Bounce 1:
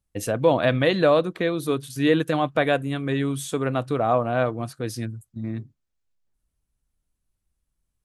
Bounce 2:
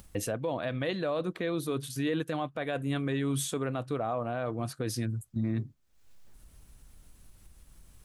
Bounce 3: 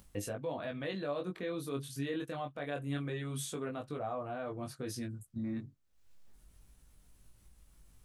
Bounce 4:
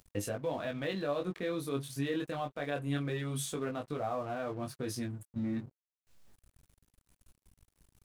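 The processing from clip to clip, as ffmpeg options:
-af "areverse,acompressor=threshold=-28dB:ratio=5,areverse,alimiter=level_in=6.5dB:limit=-24dB:level=0:latency=1:release=424,volume=-6.5dB,acompressor=mode=upward:threshold=-48dB:ratio=2.5,volume=8.5dB"
-af "flanger=delay=19.5:depth=2.3:speed=0.26,volume=-3.5dB"
-af "aeval=exprs='sgn(val(0))*max(abs(val(0))-0.00133,0)':c=same,volume=3.5dB"

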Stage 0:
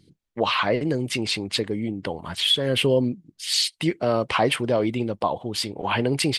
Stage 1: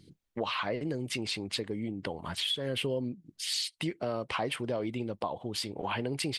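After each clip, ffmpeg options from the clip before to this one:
-af "acompressor=threshold=-35dB:ratio=2.5"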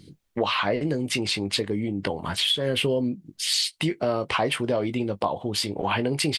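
-filter_complex "[0:a]asplit=2[a][b];[b]adelay=20,volume=-11dB[c];[a][c]amix=inputs=2:normalize=0,volume=8dB"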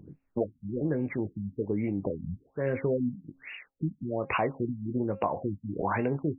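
-af "bandreject=f=269.3:t=h:w=4,bandreject=f=538.6:t=h:w=4,bandreject=f=807.9:t=h:w=4,bandreject=f=1.0772k:t=h:w=4,bandreject=f=1.3465k:t=h:w=4,bandreject=f=1.6158k:t=h:w=4,bandreject=f=1.8851k:t=h:w=4,bandreject=f=2.1544k:t=h:w=4,bandreject=f=2.4237k:t=h:w=4,bandreject=f=2.693k:t=h:w=4,bandreject=f=2.9623k:t=h:w=4,bandreject=f=3.2316k:t=h:w=4,bandreject=f=3.5009k:t=h:w=4,bandreject=f=3.7702k:t=h:w=4,bandreject=f=4.0395k:t=h:w=4,bandreject=f=4.3088k:t=h:w=4,bandreject=f=4.5781k:t=h:w=4,bandreject=f=4.8474k:t=h:w=4,bandreject=f=5.1167k:t=h:w=4,bandreject=f=5.386k:t=h:w=4,bandreject=f=5.6553k:t=h:w=4,bandreject=f=5.9246k:t=h:w=4,bandreject=f=6.1939k:t=h:w=4,bandreject=f=6.4632k:t=h:w=4,bandreject=f=6.7325k:t=h:w=4,bandreject=f=7.0018k:t=h:w=4,bandreject=f=7.2711k:t=h:w=4,acompressor=threshold=-29dB:ratio=1.5,afftfilt=real='re*lt(b*sr/1024,250*pow(2900/250,0.5+0.5*sin(2*PI*1.2*pts/sr)))':imag='im*lt(b*sr/1024,250*pow(2900/250,0.5+0.5*sin(2*PI*1.2*pts/sr)))':win_size=1024:overlap=0.75"

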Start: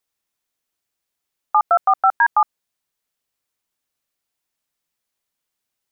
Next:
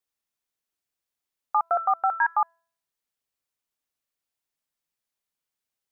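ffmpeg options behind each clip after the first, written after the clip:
-af "bandreject=f=333.6:t=h:w=4,bandreject=f=667.2:t=h:w=4,bandreject=f=1.0008k:t=h:w=4,bandreject=f=1.3344k:t=h:w=4,bandreject=f=1.668k:t=h:w=4,bandreject=f=2.0016k:t=h:w=4,bandreject=f=2.3352k:t=h:w=4,bandreject=f=2.6688k:t=h:w=4,bandreject=f=3.0024k:t=h:w=4,bandreject=f=3.336k:t=h:w=4,bandreject=f=3.6696k:t=h:w=4,bandreject=f=4.0032k:t=h:w=4,bandreject=f=4.3368k:t=h:w=4,bandreject=f=4.6704k:t=h:w=4,bandreject=f=5.004k:t=h:w=4,bandreject=f=5.3376k:t=h:w=4,bandreject=f=5.6712k:t=h:w=4,bandreject=f=6.0048k:t=h:w=4,bandreject=f=6.3384k:t=h:w=4,bandreject=f=6.672k:t=h:w=4,bandreject=f=7.0056k:t=h:w=4,bandreject=f=7.3392k:t=h:w=4,bandreject=f=7.6728k:t=h:w=4,bandreject=f=8.0064k:t=h:w=4,bandreject=f=8.34k:t=h:w=4,bandreject=f=8.6736k:t=h:w=4,bandreject=f=9.0072k:t=h:w=4,bandreject=f=9.3408k:t=h:w=4,bandreject=f=9.6744k:t=h:w=4,bandreject=f=10.008k:t=h:w=4,bandreject=f=10.3416k:t=h:w=4,bandreject=f=10.6752k:t=h:w=4,bandreject=f=11.0088k:t=h:w=4,bandreject=f=11.3424k:t=h:w=4,bandreject=f=11.676k:t=h:w=4,bandreject=f=12.0096k:t=h:w=4,bandreject=f=12.3432k:t=h:w=4,bandreject=f=12.6768k:t=h:w=4,bandreject=f=13.0104k:t=h:w=4,bandreject=f=13.344k:t=h:w=4,volume=-7dB"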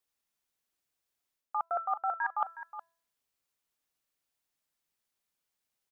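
-af "areverse,acompressor=threshold=-30dB:ratio=10,areverse,aecho=1:1:366:0.237,volume=1.5dB"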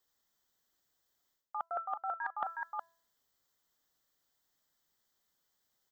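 -af "superequalizer=12b=0.316:16b=0.316,areverse,acompressor=threshold=-40dB:ratio=10,areverse,volume=6dB"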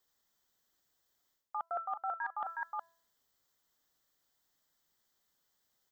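-af "alimiter=level_in=3.5dB:limit=-24dB:level=0:latency=1:release=65,volume=-3.5dB,volume=1dB"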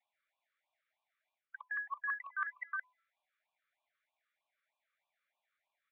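-af "highpass=f=270:t=q:w=0.5412,highpass=f=270:t=q:w=1.307,lowpass=f=2.7k:t=q:w=0.5176,lowpass=f=2.7k:t=q:w=0.7071,lowpass=f=2.7k:t=q:w=1.932,afreqshift=340,afftfilt=real='re*(1-between(b*sr/1024,770*pow(1700/770,0.5+0.5*sin(2*PI*3.2*pts/sr))/1.41,770*pow(1700/770,0.5+0.5*sin(2*PI*3.2*pts/sr))*1.41))':imag='im*(1-between(b*sr/1024,770*pow(1700/770,0.5+0.5*sin(2*PI*3.2*pts/sr))/1.41,770*pow(1700/770,0.5+0.5*sin(2*PI*3.2*pts/sr))*1.41))':win_size=1024:overlap=0.75,volume=2.5dB"

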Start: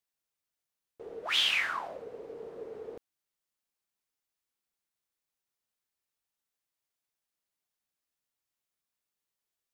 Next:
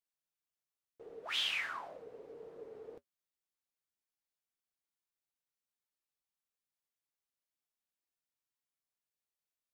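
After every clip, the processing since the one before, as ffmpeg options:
-af "flanger=delay=6.1:depth=1.5:regen=-60:speed=2:shape=triangular,volume=-3.5dB"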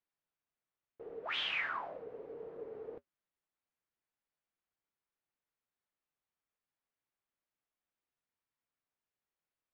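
-af "lowpass=2.3k,volume=4dB"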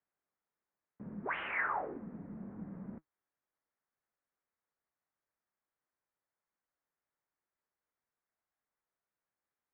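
-af "asubboost=boost=6:cutoff=160,highpass=f=350:t=q:w=0.5412,highpass=f=350:t=q:w=1.307,lowpass=f=2.3k:t=q:w=0.5176,lowpass=f=2.3k:t=q:w=0.7071,lowpass=f=2.3k:t=q:w=1.932,afreqshift=-250,volume=4dB"

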